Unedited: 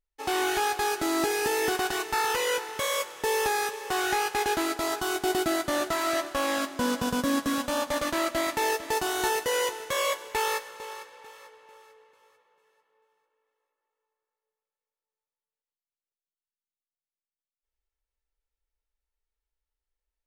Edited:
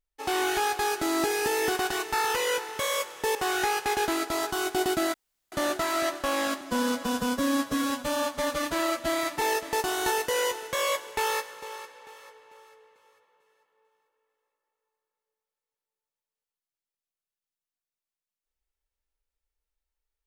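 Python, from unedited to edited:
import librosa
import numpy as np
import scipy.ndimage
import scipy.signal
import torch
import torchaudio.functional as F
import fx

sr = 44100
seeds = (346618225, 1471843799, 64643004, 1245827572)

y = fx.edit(x, sr, fx.cut(start_s=3.35, length_s=0.49),
    fx.insert_room_tone(at_s=5.63, length_s=0.38),
    fx.stretch_span(start_s=6.72, length_s=1.87, factor=1.5), tone=tone)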